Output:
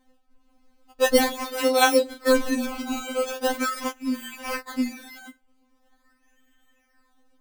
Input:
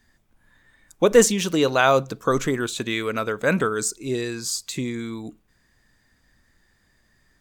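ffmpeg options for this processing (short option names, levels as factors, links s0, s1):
-filter_complex "[0:a]asettb=1/sr,asplit=3[s0][s1][s2];[s0]atrim=end=1.454[s3];[s1]atrim=start=1.45:end=3.4,asetpts=PTS-STARTPTS,afade=t=in:d=0.004:c=qsin,afade=t=out:st=1.946:d=0.004:c=qsin,asplit=2[s4][s5];[s5]adelay=33,volume=0.501[s6];[s4][s6]amix=inputs=2:normalize=0,atrim=end_sample=85995[s7];[s2]atrim=start=3.396[s8];[s3][s7]acrossfade=d=0.004:c1=hsin:c2=qsin[s9];[s9][s8]acrossfade=d=0.004:c1=qsin:c2=hsin,acrusher=samples=17:mix=1:aa=0.000001:lfo=1:lforange=17:lforate=0.42,afftfilt=real='re*3.46*eq(mod(b,12),0)':imag='im*3.46*eq(mod(b,12),0)':win_size=2048:overlap=0.75"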